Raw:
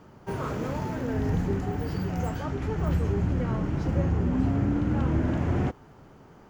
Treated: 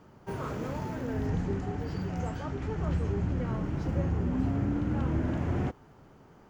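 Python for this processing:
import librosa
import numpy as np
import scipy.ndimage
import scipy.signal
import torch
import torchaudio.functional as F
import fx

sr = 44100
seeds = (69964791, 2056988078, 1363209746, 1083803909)

y = fx.savgol(x, sr, points=9, at=(1.27, 3.45))
y = y * 10.0 ** (-4.0 / 20.0)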